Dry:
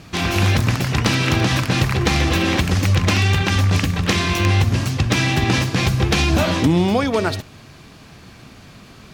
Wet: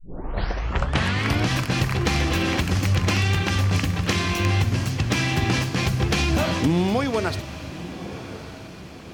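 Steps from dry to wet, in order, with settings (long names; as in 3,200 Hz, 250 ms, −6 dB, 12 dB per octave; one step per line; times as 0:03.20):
turntable start at the beginning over 1.52 s
notch filter 3,700 Hz, Q 21
feedback delay with all-pass diffusion 1,153 ms, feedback 46%, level −13.5 dB
level −4.5 dB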